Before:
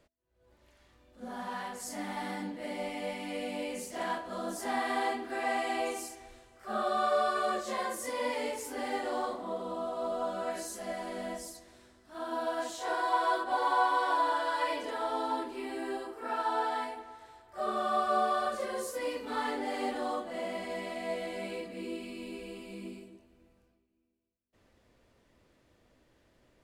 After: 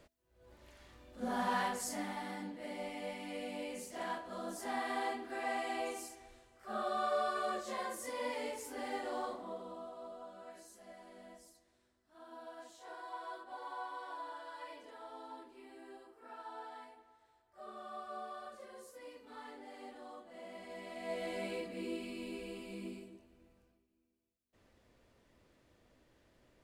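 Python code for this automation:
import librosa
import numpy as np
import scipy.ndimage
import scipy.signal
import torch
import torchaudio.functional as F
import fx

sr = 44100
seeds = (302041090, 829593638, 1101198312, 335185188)

y = fx.gain(x, sr, db=fx.line((1.64, 4.5), (2.23, -6.0), (9.36, -6.0), (10.27, -17.0), (20.13, -17.0), (20.9, -9.0), (21.29, -2.0)))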